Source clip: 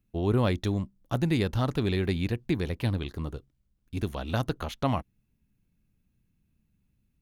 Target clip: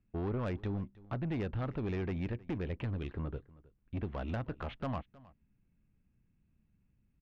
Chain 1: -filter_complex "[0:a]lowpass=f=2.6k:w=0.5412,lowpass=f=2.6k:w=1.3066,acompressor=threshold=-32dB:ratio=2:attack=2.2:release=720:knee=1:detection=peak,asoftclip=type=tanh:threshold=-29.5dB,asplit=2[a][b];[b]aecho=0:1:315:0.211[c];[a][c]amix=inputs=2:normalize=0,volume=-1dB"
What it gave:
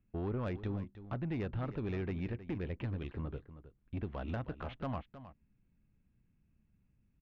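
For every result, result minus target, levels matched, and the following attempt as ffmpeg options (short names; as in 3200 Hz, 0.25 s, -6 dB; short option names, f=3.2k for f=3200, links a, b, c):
echo-to-direct +8 dB; compressor: peak gain reduction +3 dB
-filter_complex "[0:a]lowpass=f=2.6k:w=0.5412,lowpass=f=2.6k:w=1.3066,acompressor=threshold=-32dB:ratio=2:attack=2.2:release=720:knee=1:detection=peak,asoftclip=type=tanh:threshold=-29.5dB,asplit=2[a][b];[b]aecho=0:1:315:0.0841[c];[a][c]amix=inputs=2:normalize=0,volume=-1dB"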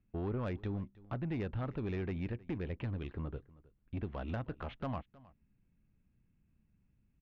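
compressor: peak gain reduction +3 dB
-filter_complex "[0:a]lowpass=f=2.6k:w=0.5412,lowpass=f=2.6k:w=1.3066,acompressor=threshold=-26dB:ratio=2:attack=2.2:release=720:knee=1:detection=peak,asoftclip=type=tanh:threshold=-29.5dB,asplit=2[a][b];[b]aecho=0:1:315:0.0841[c];[a][c]amix=inputs=2:normalize=0,volume=-1dB"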